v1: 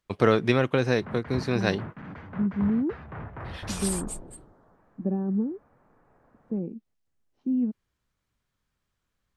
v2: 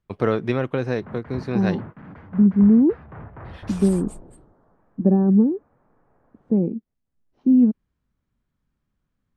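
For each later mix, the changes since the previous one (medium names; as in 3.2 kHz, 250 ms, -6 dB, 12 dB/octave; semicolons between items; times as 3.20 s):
second voice +11.0 dB; master: add treble shelf 2.5 kHz -10.5 dB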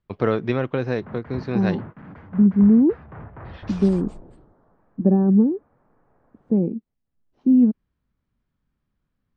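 first voice: add low-pass 5.5 kHz 24 dB/octave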